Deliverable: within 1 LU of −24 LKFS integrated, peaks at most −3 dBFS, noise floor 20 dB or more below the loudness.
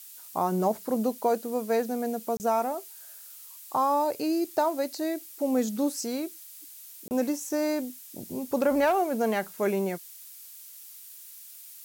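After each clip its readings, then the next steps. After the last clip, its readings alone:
number of dropouts 2; longest dropout 29 ms; background noise floor −47 dBFS; target noise floor −49 dBFS; integrated loudness −28.5 LKFS; sample peak −13.0 dBFS; target loudness −24.0 LKFS
→ repair the gap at 0:02.37/0:07.08, 29 ms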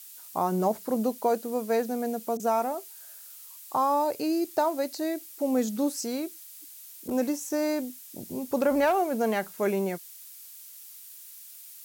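number of dropouts 0; background noise floor −47 dBFS; target noise floor −49 dBFS
→ noise reduction from a noise print 6 dB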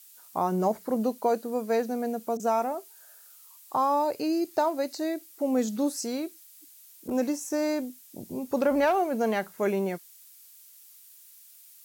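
background noise floor −53 dBFS; integrated loudness −28.5 LKFS; sample peak −13.0 dBFS; target loudness −24.0 LKFS
→ level +4.5 dB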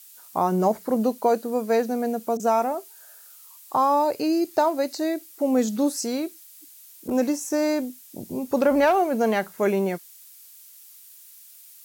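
integrated loudness −24.0 LKFS; sample peak −8.5 dBFS; background noise floor −49 dBFS

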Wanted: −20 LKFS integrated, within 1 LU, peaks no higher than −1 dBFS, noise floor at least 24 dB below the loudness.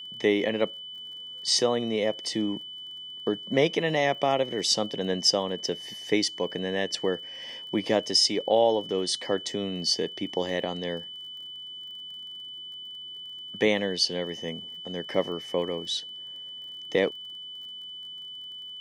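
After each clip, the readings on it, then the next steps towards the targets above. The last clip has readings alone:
crackle rate 35 per second; interfering tone 3,000 Hz; level of the tone −38 dBFS; integrated loudness −28.0 LKFS; sample peak −9.5 dBFS; target loudness −20.0 LKFS
→ click removal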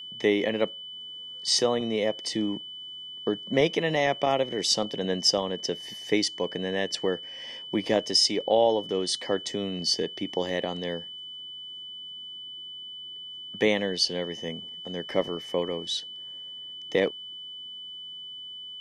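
crackle rate 0 per second; interfering tone 3,000 Hz; level of the tone −38 dBFS
→ notch filter 3,000 Hz, Q 30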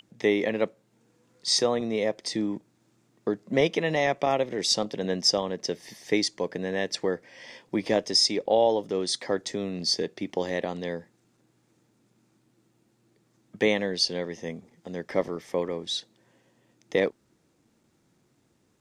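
interfering tone none found; integrated loudness −27.0 LKFS; sample peak −9.5 dBFS; target loudness −20.0 LKFS
→ level +7 dB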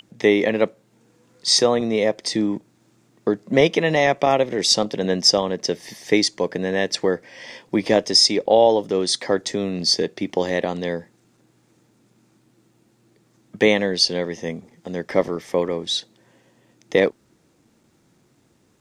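integrated loudness −20.0 LKFS; sample peak −2.5 dBFS; background noise floor −61 dBFS

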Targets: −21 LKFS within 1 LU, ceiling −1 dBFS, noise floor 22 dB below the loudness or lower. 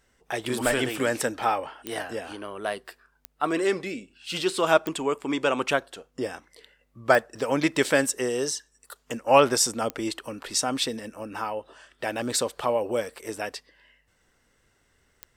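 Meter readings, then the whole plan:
number of clicks 6; integrated loudness −26.5 LKFS; sample peak −4.0 dBFS; target loudness −21.0 LKFS
→ click removal
level +5.5 dB
brickwall limiter −1 dBFS

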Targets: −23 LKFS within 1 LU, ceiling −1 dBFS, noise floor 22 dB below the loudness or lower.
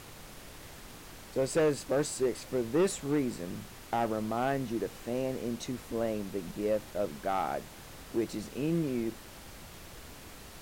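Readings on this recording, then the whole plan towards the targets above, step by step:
share of clipped samples 0.9%; peaks flattened at −22.0 dBFS; background noise floor −49 dBFS; target noise floor −55 dBFS; integrated loudness −33.0 LKFS; sample peak −22.0 dBFS; target loudness −23.0 LKFS
→ clipped peaks rebuilt −22 dBFS
noise reduction from a noise print 6 dB
level +10 dB

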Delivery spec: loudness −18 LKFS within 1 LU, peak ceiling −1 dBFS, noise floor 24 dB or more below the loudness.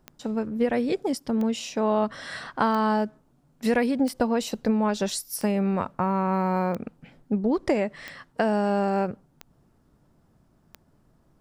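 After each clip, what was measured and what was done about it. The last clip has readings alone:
number of clicks 9; integrated loudness −26.0 LKFS; sample peak −9.5 dBFS; target loudness −18.0 LKFS
→ click removal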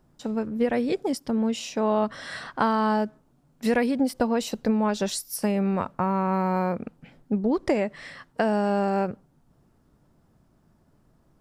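number of clicks 0; integrated loudness −26.0 LKFS; sample peak −9.5 dBFS; target loudness −18.0 LKFS
→ level +8 dB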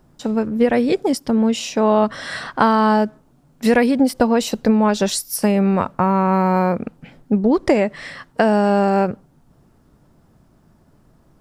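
integrated loudness −18.0 LKFS; sample peak −1.5 dBFS; background noise floor −55 dBFS

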